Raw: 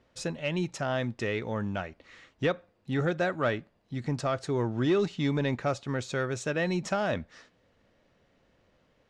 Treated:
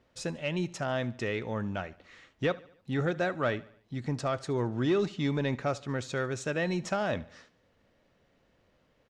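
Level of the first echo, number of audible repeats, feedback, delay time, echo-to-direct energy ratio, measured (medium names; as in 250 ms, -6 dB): -21.0 dB, 3, 50%, 73 ms, -20.0 dB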